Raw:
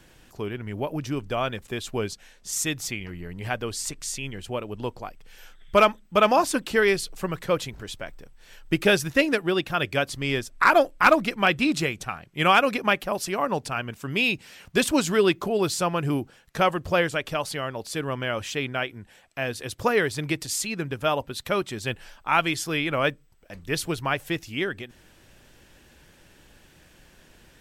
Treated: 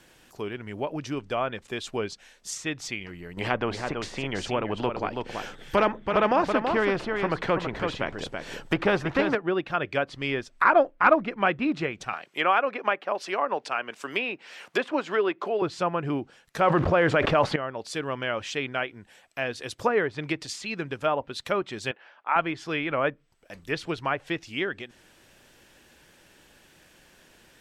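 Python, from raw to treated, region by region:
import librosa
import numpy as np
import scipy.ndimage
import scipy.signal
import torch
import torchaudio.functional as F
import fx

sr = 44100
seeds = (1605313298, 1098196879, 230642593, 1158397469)

y = fx.chain(x, sr, fx.tilt_shelf(db=7.0, hz=780.0),
    fx.echo_single(ms=329, db=-10.0),
    fx.spectral_comp(ratio=2.0), at=(3.37, 9.35))
y = fx.chain(y, sr, fx.highpass(hz=150.0, slope=12),
    fx.bass_treble(bass_db=-15, treble_db=-3),
    fx.band_squash(depth_pct=40), at=(12.13, 15.62))
y = fx.chain(y, sr, fx.block_float(bits=5),
    fx.env_flatten(amount_pct=100), at=(16.63, 17.56))
y = fx.chain(y, sr, fx.bandpass_edges(low_hz=470.0, high_hz=2300.0),
    fx.air_absorb(metres=78.0), at=(21.91, 22.36))
y = fx.low_shelf(y, sr, hz=150.0, db=-11.0)
y = fx.env_lowpass_down(y, sr, base_hz=1700.0, full_db=-21.5)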